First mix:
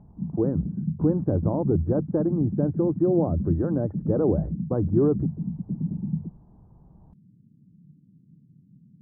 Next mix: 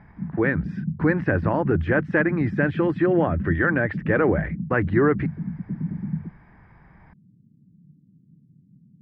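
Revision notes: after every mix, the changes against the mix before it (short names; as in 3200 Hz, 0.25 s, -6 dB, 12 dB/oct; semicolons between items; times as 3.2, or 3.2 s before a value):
speech: remove Gaussian blur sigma 10 samples; master: add synth low-pass 1800 Hz, resonance Q 3.8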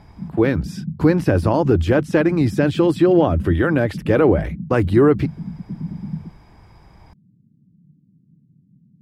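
speech +6.5 dB; master: remove synth low-pass 1800 Hz, resonance Q 3.8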